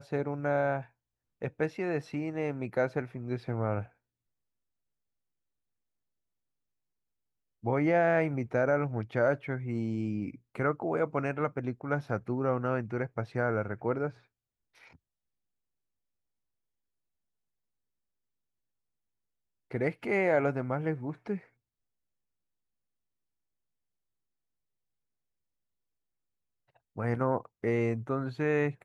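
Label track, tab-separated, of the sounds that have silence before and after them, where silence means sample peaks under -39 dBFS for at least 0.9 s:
7.640000	14.100000	sound
19.710000	21.380000	sound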